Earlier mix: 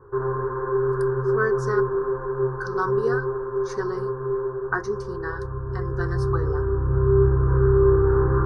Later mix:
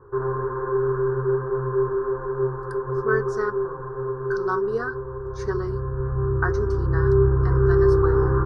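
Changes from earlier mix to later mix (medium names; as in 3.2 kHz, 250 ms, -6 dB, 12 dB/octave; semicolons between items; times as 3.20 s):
speech: entry +1.70 s; master: add treble shelf 7.7 kHz -9.5 dB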